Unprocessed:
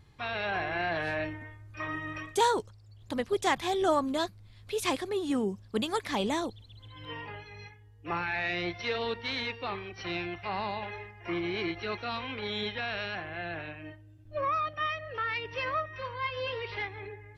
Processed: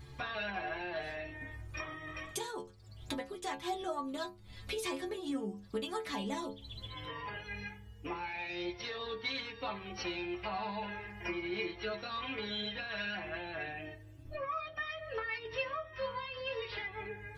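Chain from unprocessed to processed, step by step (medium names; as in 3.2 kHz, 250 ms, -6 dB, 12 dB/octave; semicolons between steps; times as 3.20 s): compression 8:1, threshold -44 dBFS, peak gain reduction 22.5 dB; inharmonic resonator 65 Hz, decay 0.42 s, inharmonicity 0.008; trim +17.5 dB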